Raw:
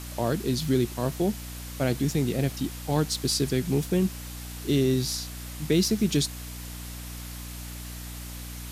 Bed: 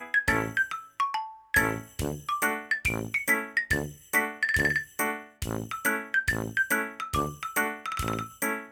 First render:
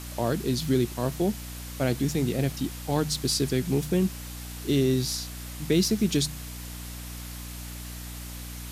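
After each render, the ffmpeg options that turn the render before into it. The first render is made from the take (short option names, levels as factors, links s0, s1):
-af "bandreject=f=50:t=h:w=4,bandreject=f=100:t=h:w=4,bandreject=f=150:t=h:w=4"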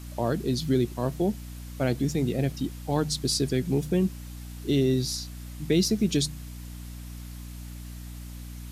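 -af "afftdn=nr=8:nf=-39"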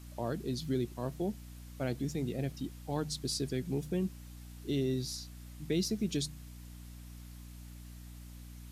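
-af "volume=0.355"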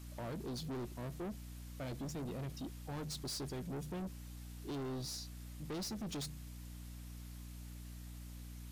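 -af "asoftclip=type=tanh:threshold=0.0112"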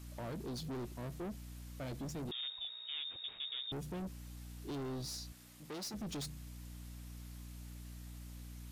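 -filter_complex "[0:a]asettb=1/sr,asplit=3[s0][s1][s2];[s0]atrim=end=2.314[s3];[s1]atrim=start=2.31:end=3.72,asetpts=PTS-STARTPTS,afade=t=in:d=0.004:c=qsin,afade=t=out:st=1.406:d=0.004:c=qsin,lowpass=f=3200:t=q:w=0.5098,lowpass=f=3200:t=q:w=0.6013,lowpass=f=3200:t=q:w=0.9,lowpass=f=3200:t=q:w=2.563,afreqshift=-3800[s4];[s2]atrim=start=3.716[s5];[s3][s4]acrossfade=d=0.004:c1=hsin:c2=qsin[s6];[s6][s5]acrossfade=d=0.004:c1=qsin:c2=hsin,asettb=1/sr,asplit=3[s7][s8][s9];[s7]atrim=end=5.324[s10];[s8]atrim=start=5.32:end=5.94,asetpts=PTS-STARTPTS,afade=t=in:d=0.004:c=qsin,afade=t=out:st=0.616:d=0.004:c=qsin,highpass=f=360:p=1[s11];[s9]atrim=start=5.936[s12];[s10][s11]acrossfade=d=0.004:c1=hsin:c2=qsin[s13];[s13][s12]acrossfade=d=0.004:c1=qsin:c2=hsin"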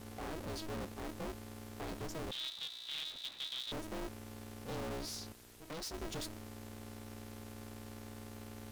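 -af "aeval=exprs='val(0)*sgn(sin(2*PI*160*n/s))':c=same"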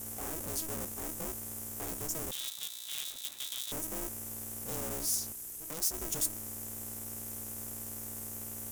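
-af "aexciter=amount=10.2:drive=2.5:freq=6100"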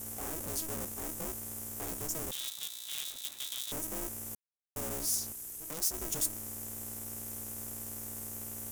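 -filter_complex "[0:a]asplit=3[s0][s1][s2];[s0]atrim=end=4.35,asetpts=PTS-STARTPTS,afade=t=out:st=4.346:d=0.004:c=hsin[s3];[s1]atrim=start=4.35:end=4.76,asetpts=PTS-STARTPTS,volume=0[s4];[s2]atrim=start=4.76,asetpts=PTS-STARTPTS,afade=t=in:d=0.004:c=hsin[s5];[s3][s4][s5]concat=n=3:v=0:a=1"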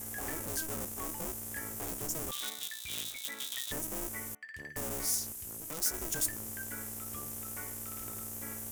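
-filter_complex "[1:a]volume=0.0891[s0];[0:a][s0]amix=inputs=2:normalize=0"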